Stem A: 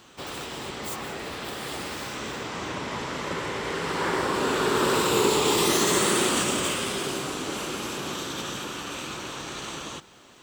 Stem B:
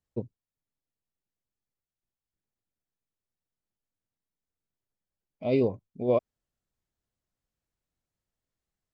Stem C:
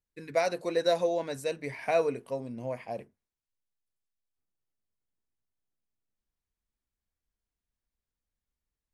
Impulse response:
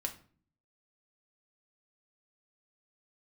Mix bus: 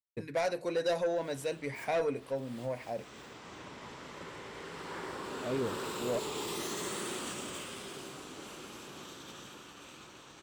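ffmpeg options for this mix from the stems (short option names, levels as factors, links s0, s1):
-filter_complex "[0:a]adelay=900,volume=0.178[s0];[1:a]volume=0.376[s1];[2:a]volume=0.668,asplit=3[s2][s3][s4];[s3]volume=0.422[s5];[s4]apad=whole_len=499492[s6];[s0][s6]sidechaincompress=threshold=0.00708:ratio=4:attack=16:release=307[s7];[3:a]atrim=start_sample=2205[s8];[s5][s8]afir=irnorm=-1:irlink=0[s9];[s7][s1][s2][s9]amix=inputs=4:normalize=0,agate=range=0.0224:threshold=0.00447:ratio=3:detection=peak,asoftclip=type=tanh:threshold=0.0562"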